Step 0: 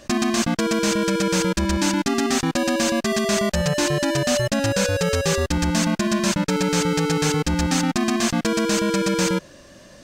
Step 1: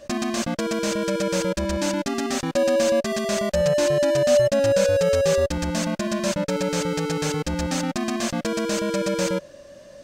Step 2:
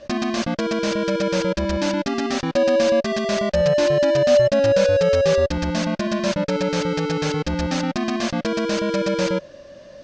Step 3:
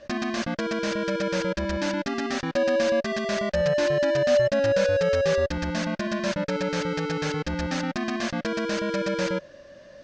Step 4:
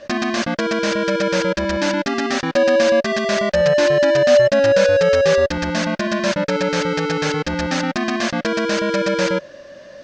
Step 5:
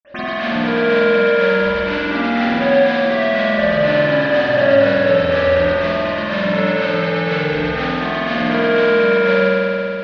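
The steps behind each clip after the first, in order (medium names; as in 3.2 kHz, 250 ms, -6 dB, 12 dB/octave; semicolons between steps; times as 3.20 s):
peaking EQ 570 Hz +13.5 dB 0.26 oct; trim -5 dB
low-pass 5.6 kHz 24 dB/octave; trim +2.5 dB
peaking EQ 1.7 kHz +5.5 dB 0.67 oct; trim -5.5 dB
bass shelf 130 Hz -9 dB; trim +8.5 dB
reverberation RT60 3.0 s, pre-delay 47 ms; trim -6 dB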